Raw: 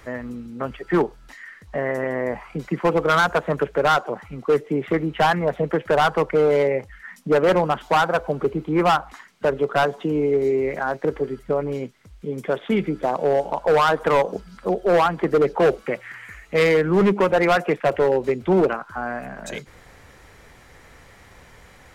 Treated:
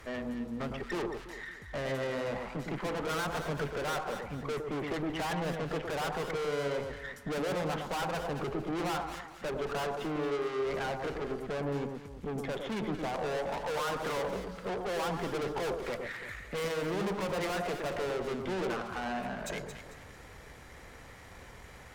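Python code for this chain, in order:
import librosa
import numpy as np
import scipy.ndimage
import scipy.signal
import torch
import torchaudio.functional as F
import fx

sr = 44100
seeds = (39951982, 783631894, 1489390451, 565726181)

y = fx.tube_stage(x, sr, drive_db=32.0, bias=0.55)
y = fx.echo_alternate(y, sr, ms=112, hz=1200.0, feedback_pct=57, wet_db=-4.0)
y = y * librosa.db_to_amplitude(-1.0)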